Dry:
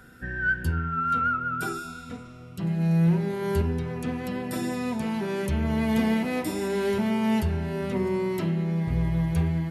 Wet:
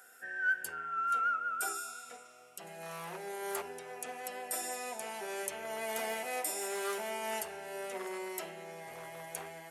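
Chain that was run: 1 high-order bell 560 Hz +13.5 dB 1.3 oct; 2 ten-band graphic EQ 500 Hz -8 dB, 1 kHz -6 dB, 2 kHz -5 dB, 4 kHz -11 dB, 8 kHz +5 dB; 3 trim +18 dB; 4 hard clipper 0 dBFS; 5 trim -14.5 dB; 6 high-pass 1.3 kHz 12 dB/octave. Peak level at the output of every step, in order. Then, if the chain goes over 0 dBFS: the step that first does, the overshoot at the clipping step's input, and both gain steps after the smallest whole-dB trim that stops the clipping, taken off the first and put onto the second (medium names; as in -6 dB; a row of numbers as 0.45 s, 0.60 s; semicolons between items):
-7.0 dBFS, -12.5 dBFS, +5.5 dBFS, 0.0 dBFS, -14.5 dBFS, -17.0 dBFS; step 3, 5.5 dB; step 3 +12 dB, step 5 -8.5 dB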